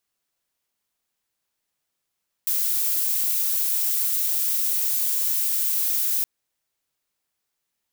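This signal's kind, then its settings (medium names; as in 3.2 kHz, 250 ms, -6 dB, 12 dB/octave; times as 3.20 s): noise violet, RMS -23 dBFS 3.77 s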